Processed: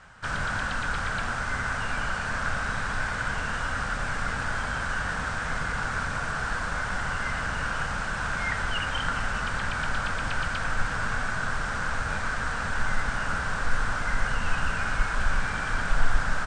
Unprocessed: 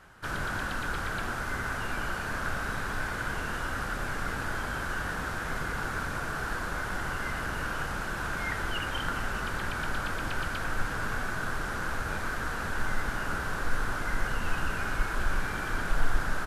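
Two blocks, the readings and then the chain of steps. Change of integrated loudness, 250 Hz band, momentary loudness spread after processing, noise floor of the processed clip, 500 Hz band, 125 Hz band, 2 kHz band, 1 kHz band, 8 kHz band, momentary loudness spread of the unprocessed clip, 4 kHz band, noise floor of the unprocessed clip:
+3.5 dB, +0.5 dB, 1 LU, −31 dBFS, +0.5 dB, +3.0 dB, +4.0 dB, +4.0 dB, +3.0 dB, 1 LU, +4.0 dB, −34 dBFS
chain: Chebyshev low-pass filter 9,100 Hz, order 8
parametric band 350 Hz −11 dB 0.58 octaves
level +4.5 dB

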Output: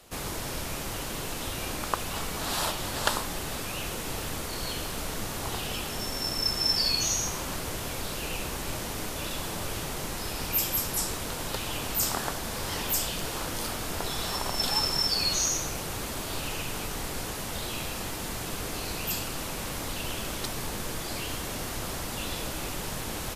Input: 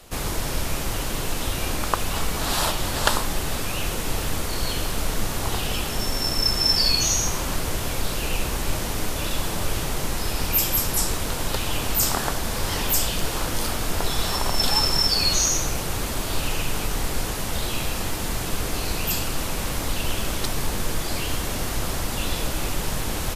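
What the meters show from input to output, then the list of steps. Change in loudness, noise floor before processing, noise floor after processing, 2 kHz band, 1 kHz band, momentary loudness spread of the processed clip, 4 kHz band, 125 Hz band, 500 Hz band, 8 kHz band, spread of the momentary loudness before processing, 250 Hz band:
−6.0 dB, −28 dBFS, −35 dBFS, −5.5 dB, −5.5 dB, 9 LU, −5.5 dB, −8.5 dB, −5.5 dB, −5.5 dB, 8 LU, −6.0 dB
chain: low-shelf EQ 61 Hz −9.5 dB
level −5.5 dB

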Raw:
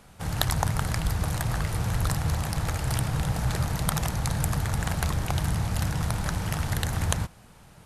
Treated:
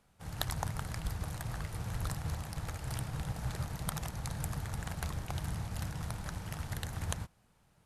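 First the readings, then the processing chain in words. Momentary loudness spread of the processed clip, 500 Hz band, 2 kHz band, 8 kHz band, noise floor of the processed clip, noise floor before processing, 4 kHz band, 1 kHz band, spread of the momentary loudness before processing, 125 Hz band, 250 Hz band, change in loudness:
3 LU, −11.5 dB, −11.0 dB, −11.0 dB, −69 dBFS, −52 dBFS, −11.0 dB, −11.0 dB, 2 LU, −11.0 dB, −11.5 dB, −11.0 dB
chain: expander for the loud parts 1.5 to 1, over −37 dBFS
level −9 dB

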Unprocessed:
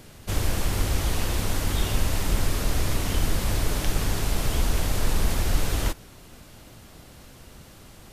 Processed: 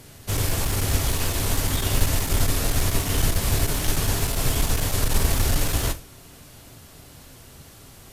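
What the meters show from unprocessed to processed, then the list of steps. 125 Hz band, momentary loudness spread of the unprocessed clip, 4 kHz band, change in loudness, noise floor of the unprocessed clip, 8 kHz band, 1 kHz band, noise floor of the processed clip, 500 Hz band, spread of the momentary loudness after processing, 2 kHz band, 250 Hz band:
+3.0 dB, 2 LU, +4.0 dB, +3.5 dB, −48 dBFS, +6.5 dB, +2.0 dB, −47 dBFS, +2.5 dB, 2 LU, +2.5 dB, +1.5 dB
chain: high-shelf EQ 6,100 Hz +6.5 dB
asymmetric clip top −20 dBFS
reverb whose tail is shaped and stops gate 130 ms falling, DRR 6.5 dB
expander for the loud parts 1.5 to 1, over −28 dBFS
level +4.5 dB

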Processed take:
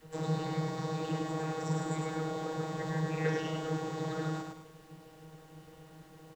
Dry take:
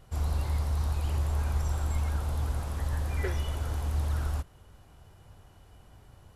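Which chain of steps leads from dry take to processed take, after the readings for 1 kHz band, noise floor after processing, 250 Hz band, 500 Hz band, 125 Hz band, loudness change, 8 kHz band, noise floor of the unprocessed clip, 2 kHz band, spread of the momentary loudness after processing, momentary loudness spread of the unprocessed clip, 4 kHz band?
+3.5 dB, −56 dBFS, +8.5 dB, +7.0 dB, −6.5 dB, −4.0 dB, −3.0 dB, −56 dBFS, +1.5 dB, 21 LU, 3 LU, 0.0 dB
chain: high-shelf EQ 5,300 Hz +10 dB
hollow resonant body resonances 450/1,800/3,900 Hz, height 11 dB
channel vocoder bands 32, saw 158 Hz
background noise pink −70 dBFS
repeating echo 104 ms, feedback 39%, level −4 dB
level +4.5 dB

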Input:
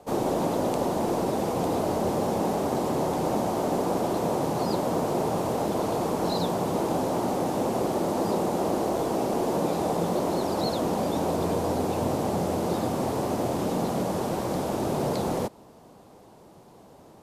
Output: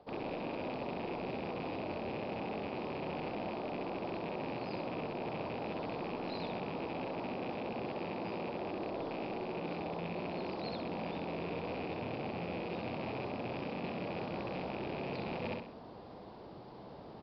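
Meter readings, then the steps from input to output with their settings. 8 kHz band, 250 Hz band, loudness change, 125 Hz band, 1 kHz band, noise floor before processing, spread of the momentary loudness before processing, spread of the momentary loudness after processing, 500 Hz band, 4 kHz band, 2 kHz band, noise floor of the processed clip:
below −35 dB, −13.0 dB, −12.5 dB, −12.5 dB, −13.0 dB, −51 dBFS, 1 LU, 1 LU, −13.0 dB, −10.0 dB, −3.5 dB, −50 dBFS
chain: loose part that buzzes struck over −31 dBFS, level −22 dBFS
downsampling to 11,025 Hz
repeating echo 65 ms, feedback 36%, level −6 dB
reversed playback
downward compressor 12 to 1, threshold −36 dBFS, peak gain reduction 16 dB
reversed playback

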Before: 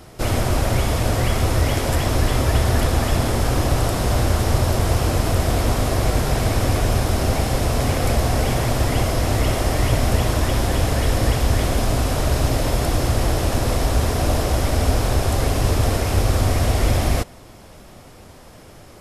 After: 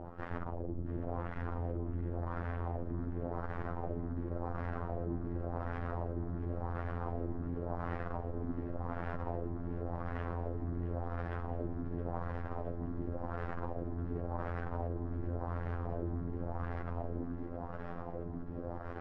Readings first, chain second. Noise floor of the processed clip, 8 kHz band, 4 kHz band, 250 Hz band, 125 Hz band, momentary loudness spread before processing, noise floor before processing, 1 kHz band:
−42 dBFS, below −40 dB, below −40 dB, −15.5 dB, −19.5 dB, 2 LU, −43 dBFS, −17.5 dB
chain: spectral tilt −1.5 dB per octave
notch filter 2,200 Hz, Q 14
reversed playback
downward compressor, threshold −24 dBFS, peak gain reduction 17 dB
reversed playback
flanger 0.23 Hz, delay 3.3 ms, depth 7.9 ms, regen +51%
tube saturation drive 42 dB, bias 0.5
phases set to zero 85.9 Hz
auto-filter low-pass sine 0.91 Hz 280–1,700 Hz
on a send: feedback echo with a high-pass in the loop 667 ms, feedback 82%, high-pass 280 Hz, level −15 dB
on the sum: level +7.5 dB

